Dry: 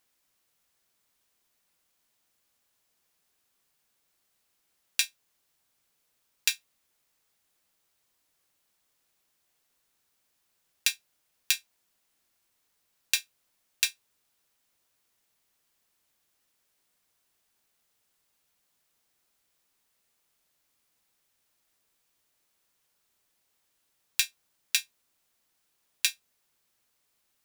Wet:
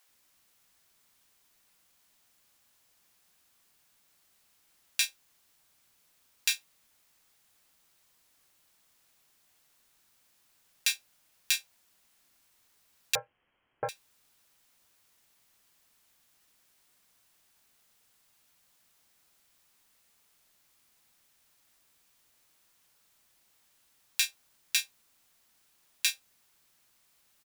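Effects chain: peak limiter -12.5 dBFS, peak gain reduction 11.5 dB; bands offset in time highs, lows 90 ms, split 440 Hz; 13.15–13.89 s: frequency inversion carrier 3.2 kHz; trim +6.5 dB

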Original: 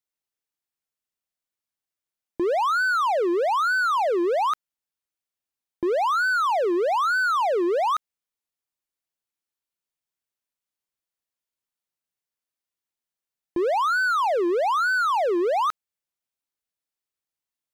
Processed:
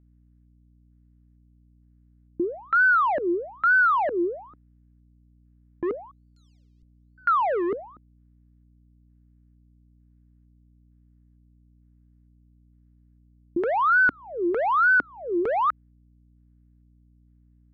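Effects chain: LFO low-pass square 1.1 Hz 280–1700 Hz; 6.11–7.18 s: inverse Chebyshev band-stop 140–1800 Hz, stop band 60 dB; hum 60 Hz, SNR 30 dB; trim -3 dB

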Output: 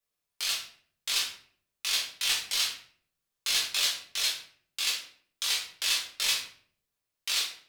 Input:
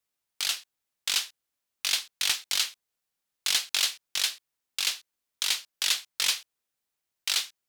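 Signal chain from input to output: simulated room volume 67 m³, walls mixed, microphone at 1.2 m; trim -6 dB

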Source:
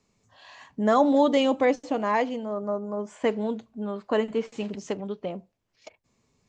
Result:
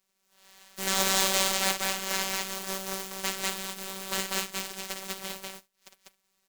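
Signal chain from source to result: spectral contrast reduction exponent 0.18; loudspeakers at several distances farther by 19 m -7 dB, 67 m -1 dB; robot voice 192 Hz; trim -5.5 dB

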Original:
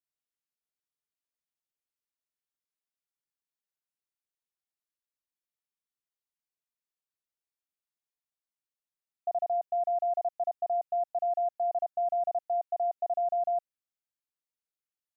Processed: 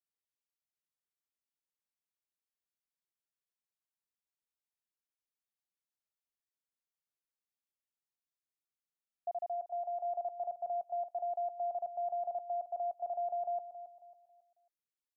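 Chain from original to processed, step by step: 9.33–10.05 s: bass shelf 460 Hz -5.5 dB; feedback delay 273 ms, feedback 35%, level -12 dB; trim -6.5 dB

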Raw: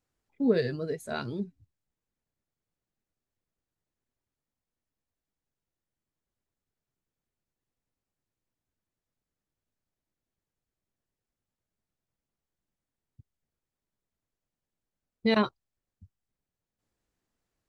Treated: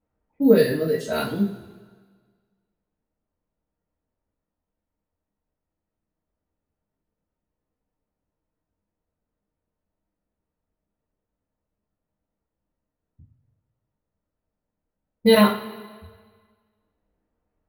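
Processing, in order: careless resampling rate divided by 3×, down none, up hold; level-controlled noise filter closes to 1.1 kHz, open at -30.5 dBFS; two-slope reverb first 0.33 s, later 1.6 s, from -17 dB, DRR -6.5 dB; trim +1.5 dB

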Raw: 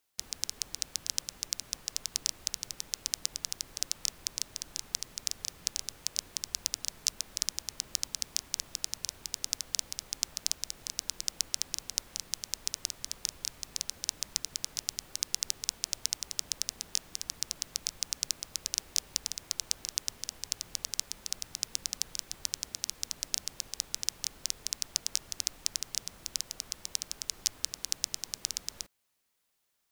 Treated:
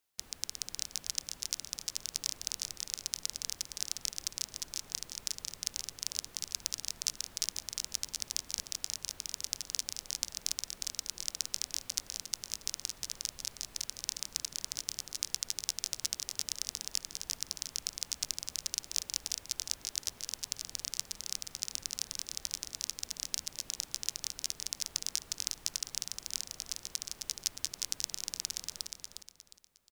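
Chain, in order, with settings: on a send: feedback delay 358 ms, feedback 32%, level -4 dB; on the sum: trim -3.5 dB

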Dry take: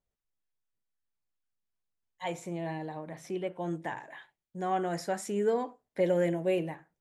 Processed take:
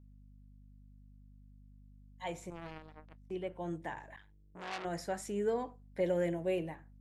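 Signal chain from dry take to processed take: 2.50–3.31 s: power-law waveshaper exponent 3; hum 50 Hz, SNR 18 dB; 4.16–4.85 s: transformer saturation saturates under 3.3 kHz; trim -5 dB

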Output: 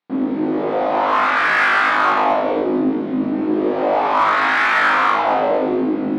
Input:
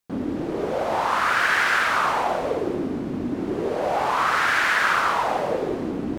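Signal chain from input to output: cabinet simulation 240–3500 Hz, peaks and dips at 270 Hz +7 dB, 420 Hz -4 dB, 1.6 kHz -4 dB, 2.9 kHz -5 dB; flutter echo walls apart 3.3 m, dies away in 0.6 s; in parallel at -4.5 dB: saturation -20 dBFS, distortion -10 dB

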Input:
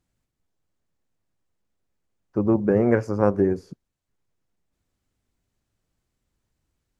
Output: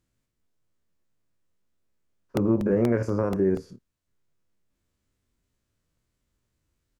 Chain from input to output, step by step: spectrogram pixelated in time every 50 ms; peaking EQ 780 Hz -8.5 dB 0.21 oct; peak limiter -15 dBFS, peak gain reduction 8.5 dB; doubling 26 ms -9.5 dB; crackling interface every 0.24 s, samples 64, repeat, from 0.93 s; trim +1 dB

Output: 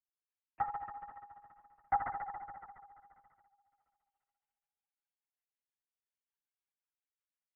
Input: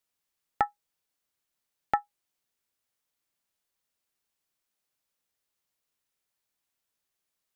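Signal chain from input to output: formants replaced by sine waves; low-pass 2.6 kHz; resonant low shelf 390 Hz +13.5 dB, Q 3; compression 4:1, threshold -37 dBFS, peak gain reduction 10.5 dB; AM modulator 44 Hz, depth 80%; rotary cabinet horn 5.5 Hz; multi-head delay 69 ms, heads first and second, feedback 74%, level -10 dB; LPC vocoder at 8 kHz whisper; trim +13 dB

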